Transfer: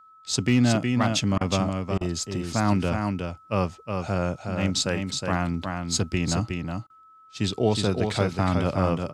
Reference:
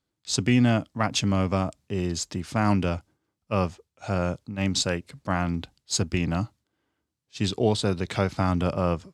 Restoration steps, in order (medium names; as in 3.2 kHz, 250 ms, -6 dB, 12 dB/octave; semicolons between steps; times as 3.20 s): clip repair -11 dBFS; band-stop 1.3 kHz, Q 30; interpolate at 1.38/1.98/6.87 s, 28 ms; inverse comb 365 ms -5 dB